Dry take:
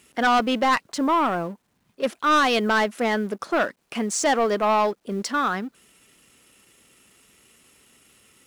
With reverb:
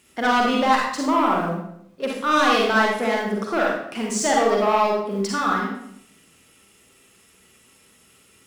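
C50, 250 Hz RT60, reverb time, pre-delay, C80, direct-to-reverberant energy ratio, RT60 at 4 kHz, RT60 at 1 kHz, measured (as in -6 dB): 0.0 dB, 0.80 s, 0.70 s, 39 ms, 4.5 dB, -2.5 dB, 0.60 s, 0.70 s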